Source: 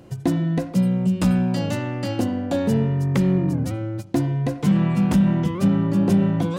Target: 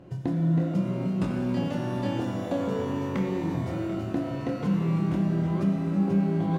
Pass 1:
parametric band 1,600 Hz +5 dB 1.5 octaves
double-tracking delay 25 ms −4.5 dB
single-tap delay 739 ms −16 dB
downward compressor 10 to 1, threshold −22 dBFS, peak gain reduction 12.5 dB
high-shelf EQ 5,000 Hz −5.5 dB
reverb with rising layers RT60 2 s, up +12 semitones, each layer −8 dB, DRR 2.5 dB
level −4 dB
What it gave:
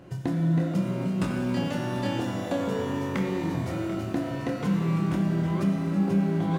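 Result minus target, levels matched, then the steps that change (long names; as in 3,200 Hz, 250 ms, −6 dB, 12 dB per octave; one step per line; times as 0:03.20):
8,000 Hz band +6.0 dB; 2,000 Hz band +4.5 dB
change: high-shelf EQ 5,000 Hz −17.5 dB
remove: parametric band 1,600 Hz +5 dB 1.5 octaves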